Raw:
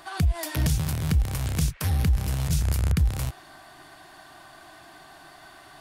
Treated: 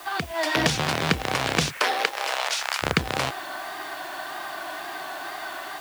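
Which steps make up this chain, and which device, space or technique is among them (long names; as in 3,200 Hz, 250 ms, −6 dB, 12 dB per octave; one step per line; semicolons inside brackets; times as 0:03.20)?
0:01.79–0:02.82: high-pass filter 330 Hz → 890 Hz 24 dB per octave
dictaphone (band-pass filter 400–4,000 Hz; automatic gain control gain up to 8 dB; tape wow and flutter; white noise bed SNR 20 dB)
level +7 dB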